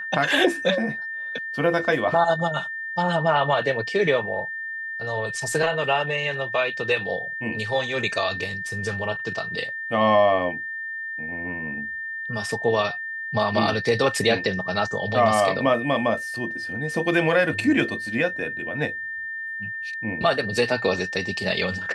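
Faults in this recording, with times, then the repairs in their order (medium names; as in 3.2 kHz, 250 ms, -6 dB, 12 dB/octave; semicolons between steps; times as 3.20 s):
whine 1.8 kHz -29 dBFS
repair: band-stop 1.8 kHz, Q 30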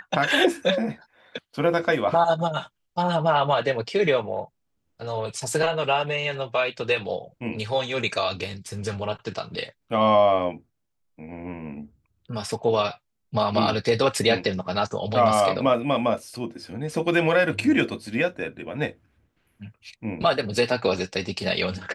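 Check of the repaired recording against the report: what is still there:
nothing left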